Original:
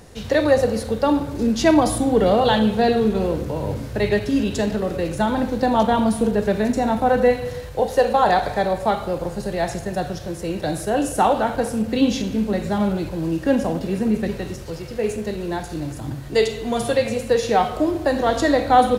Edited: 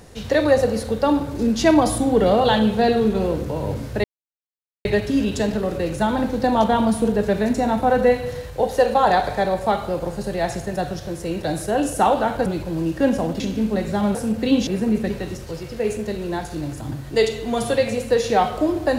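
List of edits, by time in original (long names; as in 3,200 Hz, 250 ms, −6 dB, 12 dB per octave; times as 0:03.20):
0:04.04: splice in silence 0.81 s
0:11.65–0:12.17: swap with 0:12.92–0:13.86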